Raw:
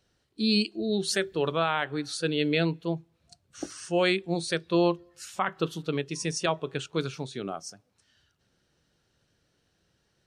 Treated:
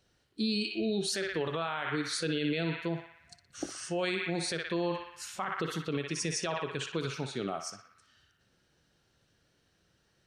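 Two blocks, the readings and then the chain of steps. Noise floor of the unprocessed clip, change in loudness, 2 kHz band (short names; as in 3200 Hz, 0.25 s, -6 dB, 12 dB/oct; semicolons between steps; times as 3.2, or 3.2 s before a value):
-73 dBFS, -5.0 dB, -3.5 dB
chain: narrowing echo 60 ms, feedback 75%, band-pass 1800 Hz, level -6 dB; limiter -22.5 dBFS, peak gain reduction 10 dB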